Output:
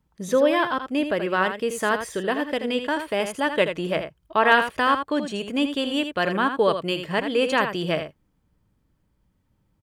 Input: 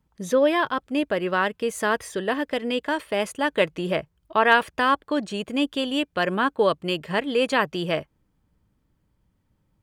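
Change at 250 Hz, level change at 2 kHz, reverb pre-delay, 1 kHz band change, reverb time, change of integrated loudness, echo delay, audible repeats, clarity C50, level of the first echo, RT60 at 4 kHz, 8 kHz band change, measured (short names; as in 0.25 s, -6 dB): +0.5 dB, +0.5 dB, none, +0.5 dB, none, +0.5 dB, 81 ms, 1, none, -8.5 dB, none, +0.5 dB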